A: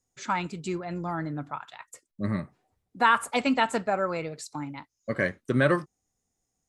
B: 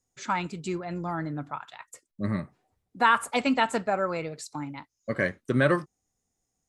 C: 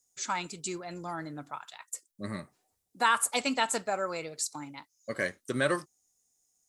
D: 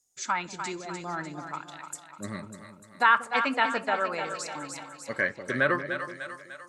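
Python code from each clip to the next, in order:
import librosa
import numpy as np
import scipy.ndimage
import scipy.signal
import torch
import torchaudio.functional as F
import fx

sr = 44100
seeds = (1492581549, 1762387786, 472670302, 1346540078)

y1 = x
y2 = fx.bass_treble(y1, sr, bass_db=-7, treble_db=15)
y2 = y2 * 10.0 ** (-4.5 / 20.0)
y3 = fx.dynamic_eq(y2, sr, hz=1600.0, q=1.0, threshold_db=-44.0, ratio=4.0, max_db=7)
y3 = fx.echo_split(y3, sr, split_hz=560.0, low_ms=189, high_ms=298, feedback_pct=52, wet_db=-8)
y3 = fx.env_lowpass_down(y3, sr, base_hz=2900.0, full_db=-24.0)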